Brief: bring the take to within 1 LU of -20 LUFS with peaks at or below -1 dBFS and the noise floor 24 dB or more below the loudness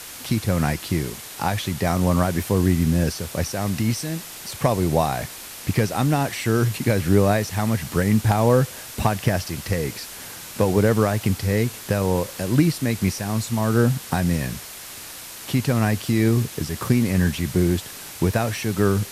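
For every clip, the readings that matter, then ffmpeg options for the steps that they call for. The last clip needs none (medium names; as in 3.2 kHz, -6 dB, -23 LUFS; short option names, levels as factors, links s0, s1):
noise floor -38 dBFS; noise floor target -46 dBFS; loudness -22.0 LUFS; peak level -4.0 dBFS; loudness target -20.0 LUFS
-> -af "afftdn=nr=8:nf=-38"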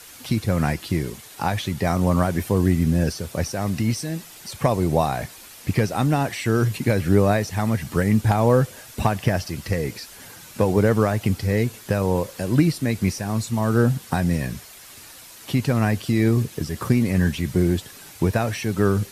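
noise floor -44 dBFS; noise floor target -47 dBFS
-> -af "afftdn=nr=6:nf=-44"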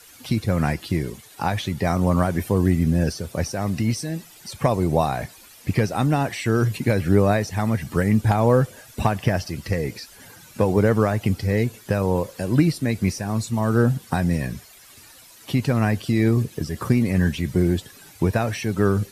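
noise floor -48 dBFS; loudness -22.5 LUFS; peak level -4.5 dBFS; loudness target -20.0 LUFS
-> -af "volume=1.33"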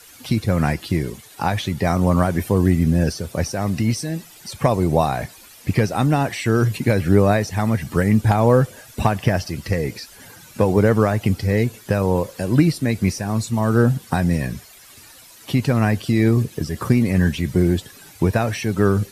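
loudness -20.0 LUFS; peak level -2.0 dBFS; noise floor -45 dBFS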